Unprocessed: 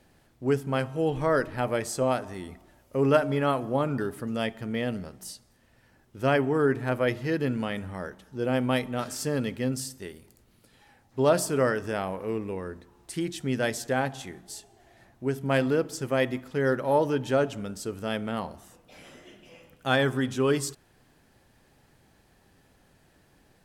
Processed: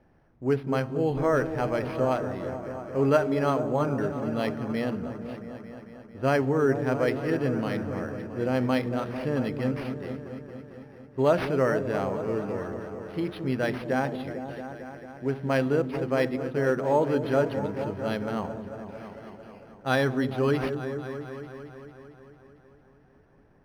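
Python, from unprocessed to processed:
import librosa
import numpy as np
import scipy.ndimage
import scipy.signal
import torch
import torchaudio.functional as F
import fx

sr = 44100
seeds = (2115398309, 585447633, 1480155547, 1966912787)

y = fx.echo_opening(x, sr, ms=224, hz=400, octaves=1, feedback_pct=70, wet_db=-6)
y = fx.env_lowpass(y, sr, base_hz=1800.0, full_db=-20.5)
y = np.interp(np.arange(len(y)), np.arange(len(y))[::6], y[::6])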